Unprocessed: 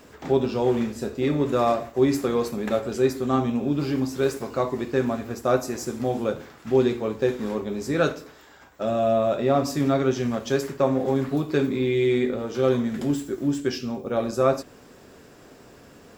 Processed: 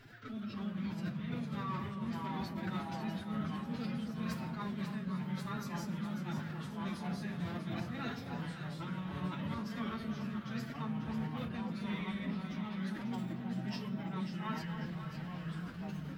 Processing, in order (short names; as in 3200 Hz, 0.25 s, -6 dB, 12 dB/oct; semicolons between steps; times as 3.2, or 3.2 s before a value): EQ curve 110 Hz 0 dB, 180 Hz +11 dB, 290 Hz -7 dB, 700 Hz -24 dB, 1200 Hz +10 dB, 2100 Hz +1 dB, 4200 Hz +2 dB, 7300 Hz -12 dB, 12000 Hz -5 dB; reverse; compressor 16:1, threshold -31 dBFS, peak gain reduction 18 dB; reverse; resonator 170 Hz, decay 1 s, harmonics all, mix 40%; formant-preserving pitch shift +8.5 st; flange 0.48 Hz, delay 8 ms, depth 2.2 ms, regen -54%; echo with dull and thin repeats by turns 0.272 s, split 1000 Hz, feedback 65%, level -5 dB; echoes that change speed 0.268 s, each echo -3 st, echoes 2; gain +1 dB